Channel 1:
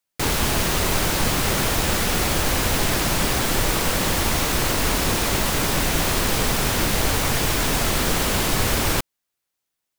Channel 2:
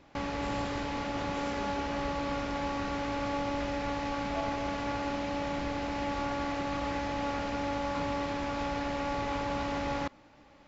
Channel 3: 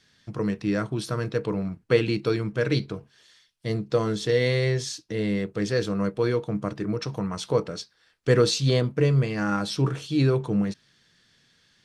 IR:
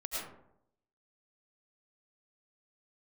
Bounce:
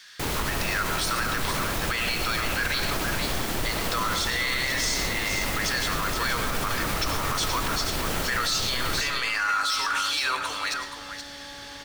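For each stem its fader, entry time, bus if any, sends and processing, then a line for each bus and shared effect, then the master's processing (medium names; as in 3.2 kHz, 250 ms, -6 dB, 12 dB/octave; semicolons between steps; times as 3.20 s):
-2.5 dB, 0.00 s, send -12.5 dB, no echo send, peaking EQ 8 kHz -2.5 dB 1.5 oct; auto duck -6 dB, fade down 0.20 s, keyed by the third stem
-12.5 dB, 2.40 s, no send, no echo send, none
-3.0 dB, 0.00 s, send -7 dB, echo send -6.5 dB, Chebyshev high-pass 1.2 kHz, order 3; level rider gain up to 8 dB; power-law waveshaper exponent 0.7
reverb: on, RT60 0.75 s, pre-delay 65 ms
echo: delay 474 ms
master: peak limiter -17 dBFS, peak gain reduction 11 dB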